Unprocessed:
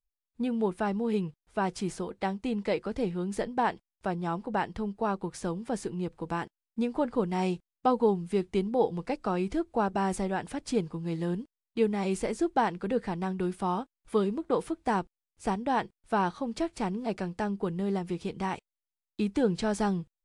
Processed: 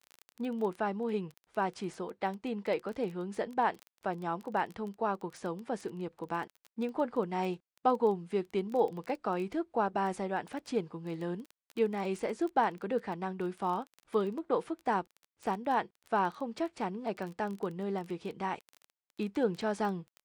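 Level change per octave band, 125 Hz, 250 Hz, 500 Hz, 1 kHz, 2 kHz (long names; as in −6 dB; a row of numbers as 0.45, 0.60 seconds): −7.5, −6.0, −2.5, −1.5, −2.0 decibels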